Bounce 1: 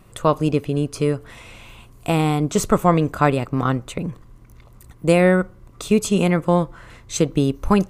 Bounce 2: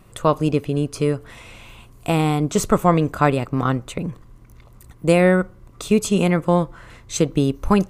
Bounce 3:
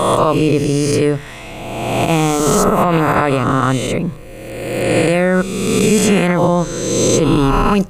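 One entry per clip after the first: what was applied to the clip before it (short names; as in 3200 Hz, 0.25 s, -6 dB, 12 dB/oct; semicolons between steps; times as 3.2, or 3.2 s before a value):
nothing audible
spectral swells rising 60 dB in 1.68 s; limiter -9 dBFS, peak gain reduction 10.5 dB; notches 50/100/150 Hz; gain +5.5 dB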